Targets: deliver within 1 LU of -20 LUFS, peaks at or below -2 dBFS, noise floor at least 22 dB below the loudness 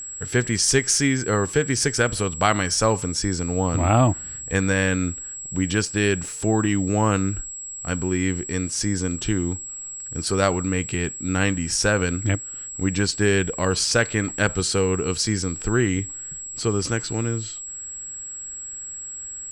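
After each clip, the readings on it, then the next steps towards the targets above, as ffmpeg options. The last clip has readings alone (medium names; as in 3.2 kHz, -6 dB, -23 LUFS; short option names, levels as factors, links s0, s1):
steady tone 7.7 kHz; tone level -32 dBFS; loudness -23.0 LUFS; peak level -4.0 dBFS; loudness target -20.0 LUFS
-> -af "bandreject=f=7700:w=30"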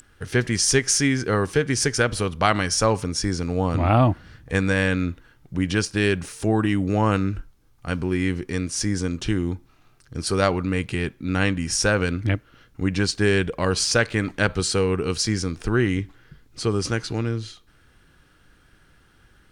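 steady tone not found; loudness -23.0 LUFS; peak level -4.0 dBFS; loudness target -20.0 LUFS
-> -af "volume=1.41,alimiter=limit=0.794:level=0:latency=1"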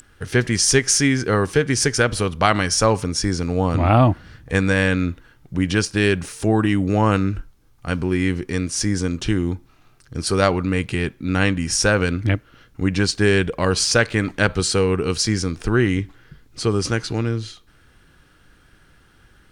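loudness -20.0 LUFS; peak level -2.0 dBFS; noise floor -54 dBFS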